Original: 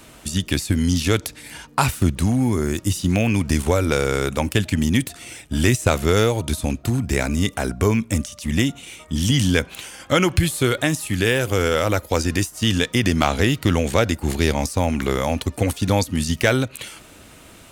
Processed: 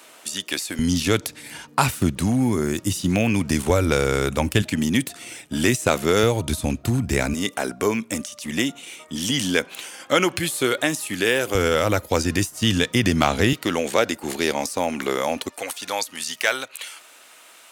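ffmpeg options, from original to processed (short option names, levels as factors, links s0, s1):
-af "asetnsamples=n=441:p=0,asendcmd='0.79 highpass f 120;3.7 highpass f 42;4.62 highpass f 170;6.23 highpass f 72;7.34 highpass f 270;11.55 highpass f 89;13.53 highpass f 300;15.49 highpass f 780',highpass=480"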